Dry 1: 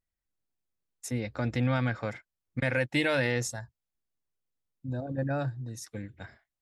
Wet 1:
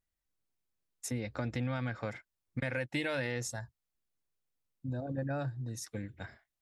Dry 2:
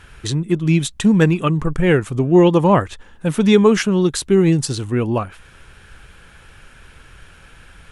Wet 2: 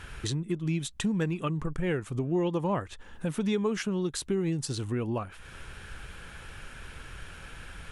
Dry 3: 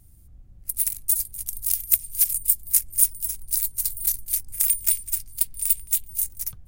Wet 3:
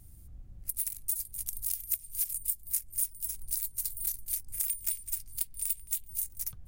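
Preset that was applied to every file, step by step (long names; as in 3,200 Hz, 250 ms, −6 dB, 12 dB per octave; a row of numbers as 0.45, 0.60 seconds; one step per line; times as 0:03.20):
downward compressor 2.5 to 1, threshold −34 dBFS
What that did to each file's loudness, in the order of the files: −6.5, −14.5, −10.5 LU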